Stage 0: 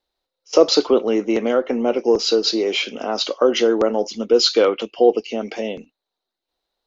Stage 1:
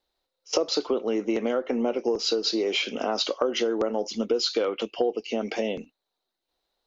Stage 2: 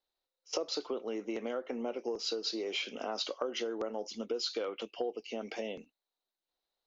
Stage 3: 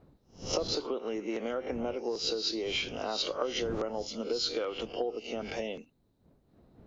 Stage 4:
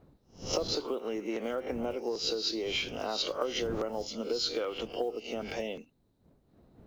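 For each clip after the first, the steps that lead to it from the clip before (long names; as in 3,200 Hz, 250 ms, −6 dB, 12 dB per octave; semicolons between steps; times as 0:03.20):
downward compressor 6 to 1, threshold −22 dBFS, peak gain reduction 14.5 dB
low-shelf EQ 340 Hz −5 dB; level −9 dB
peak hold with a rise ahead of every peak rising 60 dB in 0.32 s; wind on the microphone 290 Hz −52 dBFS; level +2 dB
one scale factor per block 7 bits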